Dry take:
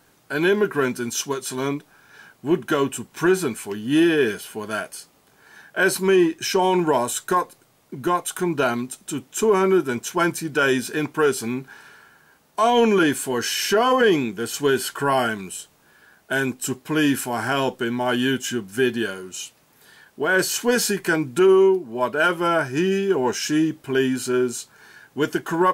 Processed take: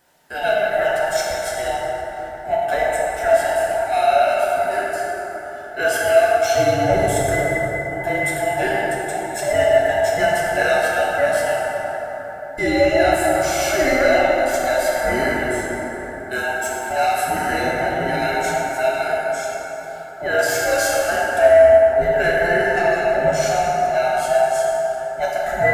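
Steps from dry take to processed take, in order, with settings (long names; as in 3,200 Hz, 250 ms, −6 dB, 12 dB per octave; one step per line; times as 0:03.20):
frequency inversion band by band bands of 1,000 Hz
low-shelf EQ 140 Hz −3.5 dB
notch filter 820 Hz, Q 12
dense smooth reverb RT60 4.8 s, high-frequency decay 0.35×, DRR −5.5 dB
level −4 dB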